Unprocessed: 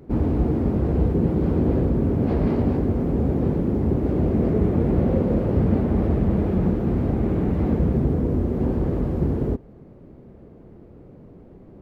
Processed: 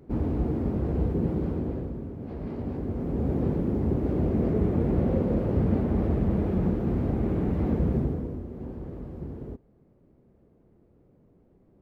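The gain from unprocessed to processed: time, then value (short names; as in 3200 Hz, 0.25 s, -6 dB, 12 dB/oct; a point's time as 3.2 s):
1.35 s -6 dB
2.16 s -17 dB
3.34 s -4.5 dB
7.98 s -4.5 dB
8.44 s -15 dB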